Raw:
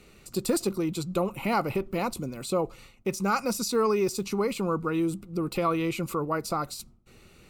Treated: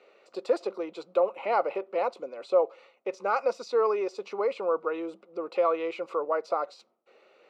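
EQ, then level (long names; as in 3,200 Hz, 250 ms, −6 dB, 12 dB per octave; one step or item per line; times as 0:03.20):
four-pole ladder high-pass 470 Hz, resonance 55%
high-frequency loss of the air 160 metres
high-shelf EQ 5,800 Hz −10 dB
+8.5 dB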